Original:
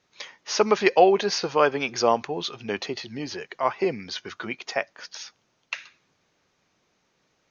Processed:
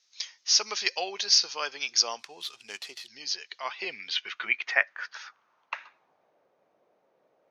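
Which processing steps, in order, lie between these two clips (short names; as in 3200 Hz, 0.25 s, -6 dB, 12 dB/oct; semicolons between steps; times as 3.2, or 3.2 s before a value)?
2.19–3.08 median filter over 9 samples; band-pass sweep 5300 Hz -> 590 Hz, 3.25–6.45; gain +9 dB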